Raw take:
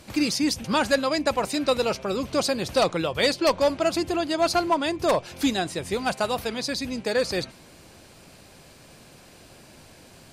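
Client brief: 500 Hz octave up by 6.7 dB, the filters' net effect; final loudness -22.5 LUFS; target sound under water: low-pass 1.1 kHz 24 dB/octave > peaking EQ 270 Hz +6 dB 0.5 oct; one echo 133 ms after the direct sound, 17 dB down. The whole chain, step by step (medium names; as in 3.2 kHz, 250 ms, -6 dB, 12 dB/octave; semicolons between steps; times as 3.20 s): low-pass 1.1 kHz 24 dB/octave; peaking EQ 270 Hz +6 dB 0.5 oct; peaking EQ 500 Hz +7.5 dB; delay 133 ms -17 dB; trim -2.5 dB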